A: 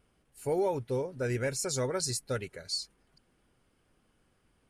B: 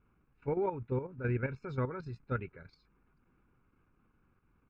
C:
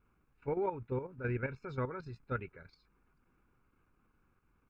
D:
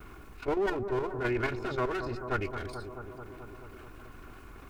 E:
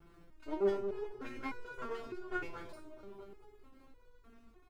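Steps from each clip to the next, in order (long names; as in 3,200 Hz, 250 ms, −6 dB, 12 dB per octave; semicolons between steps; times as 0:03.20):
low-pass filter 2,200 Hz 24 dB per octave; comb filter 0.8 ms, depth 60%; output level in coarse steps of 10 dB
parametric band 150 Hz −4 dB 2.6 octaves
lower of the sound and its delayed copy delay 2.8 ms; bucket-brigade delay 217 ms, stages 2,048, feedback 62%, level −15.5 dB; envelope flattener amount 50%; level +5 dB
single-tap delay 76 ms −14 dB; slack as between gear wheels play −44 dBFS; step-sequenced resonator 3.3 Hz 170–490 Hz; level +4.5 dB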